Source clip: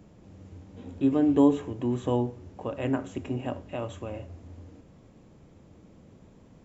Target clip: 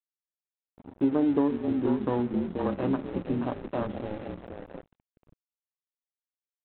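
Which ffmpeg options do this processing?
-filter_complex "[0:a]asplit=8[a][b][c][d][e][f][g][h];[b]adelay=480,afreqshift=-30,volume=-7dB[i];[c]adelay=960,afreqshift=-60,volume=-12.4dB[j];[d]adelay=1440,afreqshift=-90,volume=-17.7dB[k];[e]adelay=1920,afreqshift=-120,volume=-23.1dB[l];[f]adelay=2400,afreqshift=-150,volume=-28.4dB[m];[g]adelay=2880,afreqshift=-180,volume=-33.8dB[n];[h]adelay=3360,afreqshift=-210,volume=-39.1dB[o];[a][i][j][k][l][m][n][o]amix=inputs=8:normalize=0,afwtdn=0.0251,acompressor=threshold=-25dB:ratio=6,equalizer=f=63:w=0.53:g=-13,dynaudnorm=f=190:g=7:m=5dB,aresample=8000,aeval=exprs='sgn(val(0))*max(abs(val(0))-0.00631,0)':c=same,aresample=44100,adynamicequalizer=threshold=0.00708:dfrequency=600:dqfactor=1.1:tfrequency=600:tqfactor=1.1:attack=5:release=100:ratio=0.375:range=3:mode=cutabove:tftype=bell,volume=3dB"

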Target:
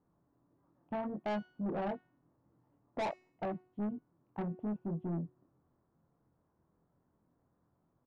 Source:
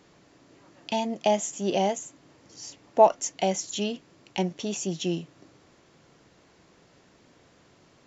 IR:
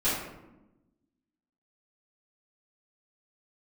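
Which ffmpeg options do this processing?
-filter_complex "[0:a]equalizer=f=510:t=o:w=1.9:g=-9,asplit=2[a][b];[b]acompressor=threshold=-38dB:ratio=6,volume=1dB[c];[a][c]amix=inputs=2:normalize=0,asplit=2[d][e];[e]adelay=24,volume=-4dB[f];[d][f]amix=inputs=2:normalize=0,volume=17dB,asoftclip=hard,volume=-17dB,lowpass=f=1.1k:w=0.5412,lowpass=f=1.1k:w=1.3066,afwtdn=0.0316,asoftclip=type=tanh:threshold=-29dB,bandreject=f=367.5:t=h:w=4,bandreject=f=735:t=h:w=4,bandreject=f=1.1025k:t=h:w=4,bandreject=f=1.47k:t=h:w=4,bandreject=f=1.8375k:t=h:w=4,bandreject=f=2.205k:t=h:w=4,bandreject=f=2.5725k:t=h:w=4,bandreject=f=2.94k:t=h:w=4,bandreject=f=3.3075k:t=h:w=4,bandreject=f=3.675k:t=h:w=4,bandreject=f=4.0425k:t=h:w=4,bandreject=f=4.41k:t=h:w=4,bandreject=f=4.7775k:t=h:w=4,bandreject=f=5.145k:t=h:w=4,bandreject=f=5.5125k:t=h:w=4,bandreject=f=5.88k:t=h:w=4,bandreject=f=6.2475k:t=h:w=4,bandreject=f=6.615k:t=h:w=4,bandreject=f=6.9825k:t=h:w=4,bandreject=f=7.35k:t=h:w=4,bandreject=f=7.7175k:t=h:w=4,bandreject=f=8.085k:t=h:w=4,bandreject=f=8.4525k:t=h:w=4,bandreject=f=8.82k:t=h:w=4,bandreject=f=9.1875k:t=h:w=4,bandreject=f=9.555k:t=h:w=4,bandreject=f=9.9225k:t=h:w=4,bandreject=f=10.29k:t=h:w=4,bandreject=f=10.6575k:t=h:w=4,bandreject=f=11.025k:t=h:w=4,bandreject=f=11.3925k:t=h:w=4,bandreject=f=11.76k:t=h:w=4,bandreject=f=12.1275k:t=h:w=4,bandreject=f=12.495k:t=h:w=4,bandreject=f=12.8625k:t=h:w=4,bandreject=f=13.23k:t=h:w=4,bandreject=f=13.5975k:t=h:w=4,bandreject=f=13.965k:t=h:w=4,bandreject=f=14.3325k:t=h:w=4,volume=-3dB"

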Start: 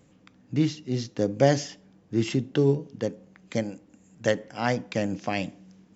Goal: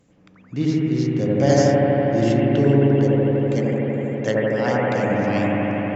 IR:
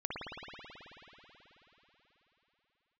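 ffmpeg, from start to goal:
-filter_complex "[0:a]asettb=1/sr,asplit=3[a][b][c];[a]atrim=end=1.494[d];[b]atrim=start=1.49:end=2.21,asetpts=PTS-STARTPTS,afade=t=in:d=0.004:c=qsin,afade=t=out:st=0.716:d=0.004:c=qsin,bass=f=250:g=3,treble=f=4k:g=8[e];[c]atrim=start=2.206[f];[d][e]acrossfade=d=0.004:c1=hsin:c2=qsin[g];[g][f]acrossfade=d=0.004:c1=qsin:c2=hsin[h];[1:a]atrim=start_sample=2205,asetrate=29988,aresample=44100[i];[h][i]afir=irnorm=-1:irlink=0"

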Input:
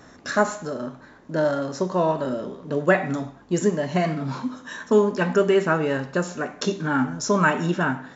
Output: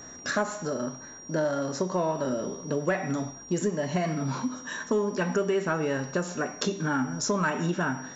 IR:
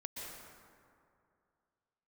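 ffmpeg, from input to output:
-af "asoftclip=type=tanh:threshold=-8dB,aeval=exprs='val(0)+0.00631*sin(2*PI*5700*n/s)':c=same,acompressor=threshold=-25dB:ratio=3"

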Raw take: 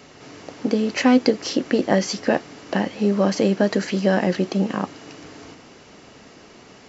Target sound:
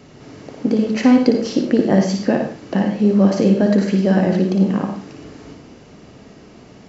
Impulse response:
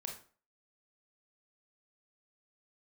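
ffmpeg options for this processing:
-filter_complex "[0:a]aeval=exprs='0.708*(cos(1*acos(clip(val(0)/0.708,-1,1)))-cos(1*PI/2))+0.00398*(cos(5*acos(clip(val(0)/0.708,-1,1)))-cos(5*PI/2))':c=same,lowshelf=f=420:g=12,asplit=2[a][b];[1:a]atrim=start_sample=2205,adelay=57[c];[b][c]afir=irnorm=-1:irlink=0,volume=-1.5dB[d];[a][d]amix=inputs=2:normalize=0,volume=-4.5dB"

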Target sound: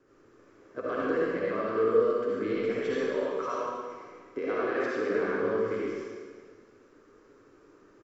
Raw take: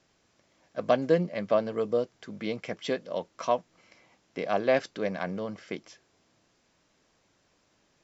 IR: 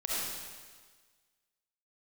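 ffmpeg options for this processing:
-filter_complex "[0:a]flanger=delay=7.1:depth=3.6:regen=-53:speed=1.1:shape=triangular,acrossover=split=880[a][b];[a]acompressor=threshold=-44dB:ratio=6[c];[c][b]amix=inputs=2:normalize=0,alimiter=level_in=8dB:limit=-24dB:level=0:latency=1,volume=-8dB,firequalizer=gain_entry='entry(100,0);entry(180,-6);entry(270,6);entry(430,12);entry(630,-8);entry(1300,4);entry(2000,-6);entry(3500,-15);entry(7400,-12)':delay=0.05:min_phase=1[d];[1:a]atrim=start_sample=2205,asetrate=41454,aresample=44100[e];[d][e]afir=irnorm=-1:irlink=0,volume=6.5dB"

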